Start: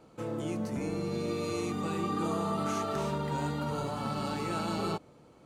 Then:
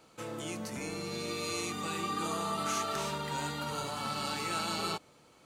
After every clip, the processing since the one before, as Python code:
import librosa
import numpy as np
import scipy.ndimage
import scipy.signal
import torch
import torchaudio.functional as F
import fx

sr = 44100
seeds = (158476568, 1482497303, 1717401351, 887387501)

y = fx.tilt_shelf(x, sr, db=-7.5, hz=1100.0)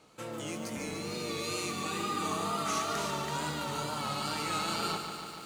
y = fx.wow_flutter(x, sr, seeds[0], rate_hz=2.1, depth_cents=69.0)
y = fx.echo_crushed(y, sr, ms=145, feedback_pct=80, bits=9, wet_db=-8.0)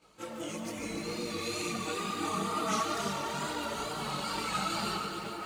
y = fx.echo_bbd(x, sr, ms=213, stages=4096, feedback_pct=74, wet_db=-9)
y = fx.chorus_voices(y, sr, voices=6, hz=0.76, base_ms=20, depth_ms=3.3, mix_pct=70)
y = y * 10.0 ** (1.5 / 20.0)